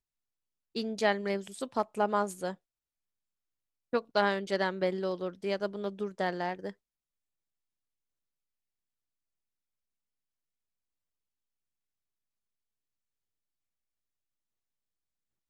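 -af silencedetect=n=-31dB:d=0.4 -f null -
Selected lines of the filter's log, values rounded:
silence_start: 0.00
silence_end: 0.76 | silence_duration: 0.76
silence_start: 2.51
silence_end: 3.93 | silence_duration: 1.42
silence_start: 6.70
silence_end: 15.50 | silence_duration: 8.80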